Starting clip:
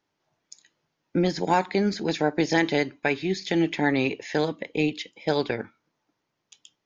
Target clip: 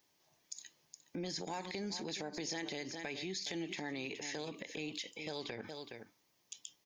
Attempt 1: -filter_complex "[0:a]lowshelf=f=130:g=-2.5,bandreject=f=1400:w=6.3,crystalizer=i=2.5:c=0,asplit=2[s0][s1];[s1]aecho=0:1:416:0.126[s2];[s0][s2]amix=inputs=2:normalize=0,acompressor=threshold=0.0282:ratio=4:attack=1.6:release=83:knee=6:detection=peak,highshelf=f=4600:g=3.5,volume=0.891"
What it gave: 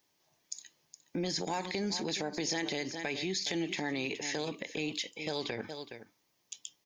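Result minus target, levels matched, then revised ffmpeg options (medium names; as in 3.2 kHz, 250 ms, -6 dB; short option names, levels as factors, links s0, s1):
compression: peak gain reduction -7 dB
-filter_complex "[0:a]lowshelf=f=130:g=-2.5,bandreject=f=1400:w=6.3,crystalizer=i=2.5:c=0,asplit=2[s0][s1];[s1]aecho=0:1:416:0.126[s2];[s0][s2]amix=inputs=2:normalize=0,acompressor=threshold=0.01:ratio=4:attack=1.6:release=83:knee=6:detection=peak,highshelf=f=4600:g=3.5,volume=0.891"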